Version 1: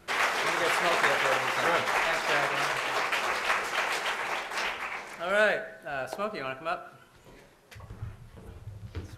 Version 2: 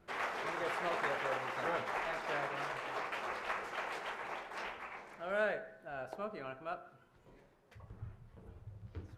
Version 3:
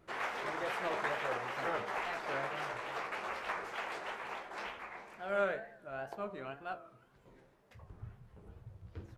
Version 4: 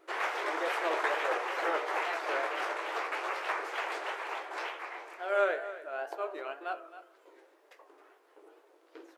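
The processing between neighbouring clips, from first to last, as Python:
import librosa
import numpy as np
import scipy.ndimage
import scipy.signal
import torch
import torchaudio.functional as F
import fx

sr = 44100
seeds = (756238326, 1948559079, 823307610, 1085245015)

y1 = fx.high_shelf(x, sr, hz=2300.0, db=-12.0)
y1 = y1 * 10.0 ** (-8.0 / 20.0)
y2 = fx.wow_flutter(y1, sr, seeds[0], rate_hz=2.1, depth_cents=130.0)
y2 = fx.doubler(y2, sr, ms=15.0, db=-12.0)
y3 = fx.brickwall_highpass(y2, sr, low_hz=290.0)
y3 = y3 + 10.0 ** (-14.0 / 20.0) * np.pad(y3, (int(267 * sr / 1000.0), 0))[:len(y3)]
y3 = y3 * 10.0 ** (5.0 / 20.0)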